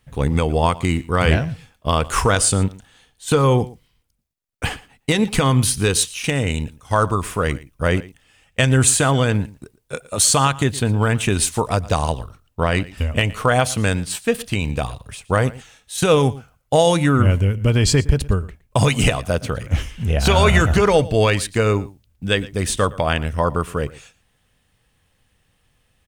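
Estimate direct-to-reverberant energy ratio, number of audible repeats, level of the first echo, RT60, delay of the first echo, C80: none, 1, -20.0 dB, none, 0.115 s, none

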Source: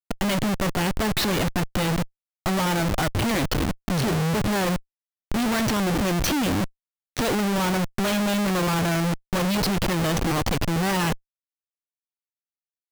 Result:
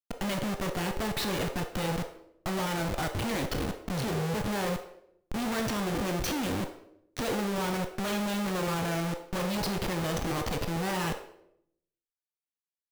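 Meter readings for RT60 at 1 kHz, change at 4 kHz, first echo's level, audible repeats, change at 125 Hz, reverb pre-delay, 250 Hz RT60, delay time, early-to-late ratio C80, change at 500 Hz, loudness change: 0.65 s, -7.5 dB, none, none, -8.5 dB, 17 ms, 1.0 s, none, 11.5 dB, -6.0 dB, -7.5 dB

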